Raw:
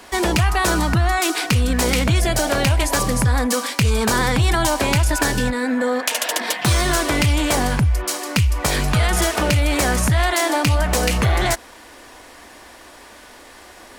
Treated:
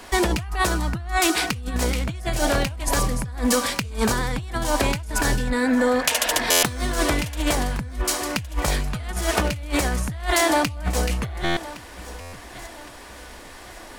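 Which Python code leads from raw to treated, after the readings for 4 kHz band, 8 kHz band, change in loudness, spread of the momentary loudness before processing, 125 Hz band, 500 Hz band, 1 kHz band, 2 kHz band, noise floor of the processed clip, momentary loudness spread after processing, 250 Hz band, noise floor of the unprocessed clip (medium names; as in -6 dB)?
-3.5 dB, -3.0 dB, -4.5 dB, 3 LU, -9.0 dB, -3.0 dB, -3.5 dB, -4.0 dB, -41 dBFS, 19 LU, -3.5 dB, -43 dBFS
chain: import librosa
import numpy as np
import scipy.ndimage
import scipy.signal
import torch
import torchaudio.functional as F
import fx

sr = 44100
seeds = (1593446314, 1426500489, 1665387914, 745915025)

y = fx.low_shelf(x, sr, hz=69.0, db=10.0)
y = fx.over_compress(y, sr, threshold_db=-18.0, ratio=-0.5)
y = fx.echo_feedback(y, sr, ms=1114, feedback_pct=38, wet_db=-17.0)
y = fx.buffer_glitch(y, sr, at_s=(6.5, 11.44, 12.2), block=512, repeats=10)
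y = y * 10.0 ** (-4.0 / 20.0)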